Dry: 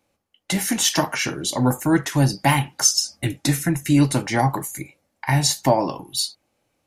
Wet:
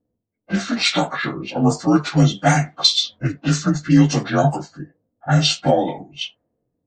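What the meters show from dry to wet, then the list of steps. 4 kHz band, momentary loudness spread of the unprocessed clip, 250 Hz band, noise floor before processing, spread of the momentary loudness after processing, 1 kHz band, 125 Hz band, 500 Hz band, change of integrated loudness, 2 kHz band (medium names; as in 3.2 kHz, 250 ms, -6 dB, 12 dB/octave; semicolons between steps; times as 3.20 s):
+4.5 dB, 9 LU, +3.0 dB, -73 dBFS, 14 LU, +1.0 dB, +3.0 dB, +3.0 dB, +2.5 dB, +1.5 dB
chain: frequency axis rescaled in octaves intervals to 87%; level-controlled noise filter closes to 340 Hz, open at -16.5 dBFS; trim +4 dB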